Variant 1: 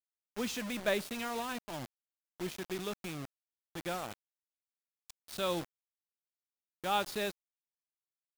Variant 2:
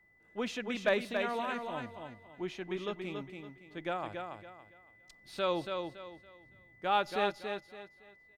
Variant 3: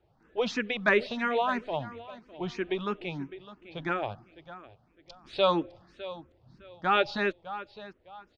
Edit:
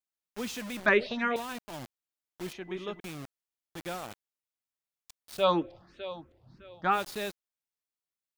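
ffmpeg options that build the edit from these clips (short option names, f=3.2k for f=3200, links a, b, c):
-filter_complex "[2:a]asplit=2[a][b];[0:a]asplit=4[c][d][e][f];[c]atrim=end=0.862[g];[a]atrim=start=0.858:end=1.362[h];[d]atrim=start=1.358:end=2.532[i];[1:a]atrim=start=2.528:end=3.002[j];[e]atrim=start=2.998:end=5.46[k];[b]atrim=start=5.36:end=7[l];[f]atrim=start=6.9[m];[g][h]acrossfade=d=0.004:c1=hsin:c2=hsin[n];[n][i]acrossfade=d=0.004:c1=hsin:c2=hsin[o];[o][j]acrossfade=d=0.004:c1=hsin:c2=hsin[p];[p][k]acrossfade=d=0.004:c1=hsin:c2=hsin[q];[q][l]acrossfade=d=0.1:c1=tri:c2=tri[r];[r][m]acrossfade=d=0.1:c1=tri:c2=tri"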